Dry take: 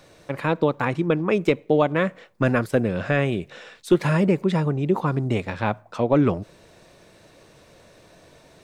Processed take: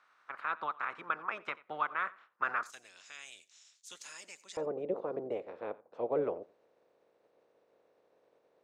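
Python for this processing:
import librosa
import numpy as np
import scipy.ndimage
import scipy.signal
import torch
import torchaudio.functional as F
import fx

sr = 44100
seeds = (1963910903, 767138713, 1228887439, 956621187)

y = fx.spec_clip(x, sr, under_db=18)
y = fx.bandpass_q(y, sr, hz=fx.steps((0.0, 1300.0), (2.63, 6700.0), (4.57, 490.0)), q=3.8)
y = y + 10.0 ** (-21.5 / 20.0) * np.pad(y, (int(88 * sr / 1000.0), 0))[:len(y)]
y = y * 10.0 ** (-5.5 / 20.0)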